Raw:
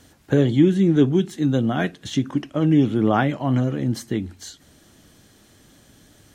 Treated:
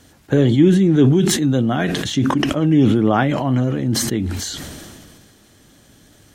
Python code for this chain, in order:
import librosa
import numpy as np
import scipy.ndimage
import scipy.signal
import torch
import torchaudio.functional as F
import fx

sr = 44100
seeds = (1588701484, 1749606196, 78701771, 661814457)

y = fx.sustainer(x, sr, db_per_s=27.0)
y = y * 10.0 ** (2.0 / 20.0)